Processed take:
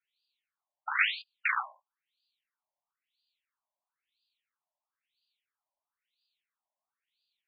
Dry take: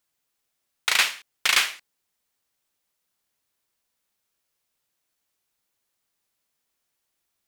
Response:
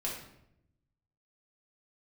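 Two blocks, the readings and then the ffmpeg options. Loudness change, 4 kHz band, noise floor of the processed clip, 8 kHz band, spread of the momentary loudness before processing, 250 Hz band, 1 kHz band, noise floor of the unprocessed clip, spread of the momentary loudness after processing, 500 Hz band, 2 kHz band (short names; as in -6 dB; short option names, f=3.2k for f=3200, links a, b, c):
-8.0 dB, -15.0 dB, under -85 dBFS, under -40 dB, 8 LU, under -40 dB, -3.0 dB, -79 dBFS, 16 LU, -20.0 dB, -6.0 dB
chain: -filter_complex "[0:a]adynamicsmooth=sensitivity=6.5:basefreq=5.4k,acrossover=split=820|5700[a][b][c];[b]flanger=delay=16.5:depth=3.6:speed=0.64[d];[c]aeval=exprs='0.178*sin(PI/2*10*val(0)/0.178)':c=same[e];[a][d][e]amix=inputs=3:normalize=0,afftfilt=real='re*between(b*sr/1024,760*pow(3500/760,0.5+0.5*sin(2*PI*1*pts/sr))/1.41,760*pow(3500/760,0.5+0.5*sin(2*PI*1*pts/sr))*1.41)':imag='im*between(b*sr/1024,760*pow(3500/760,0.5+0.5*sin(2*PI*1*pts/sr))/1.41,760*pow(3500/760,0.5+0.5*sin(2*PI*1*pts/sr))*1.41)':win_size=1024:overlap=0.75"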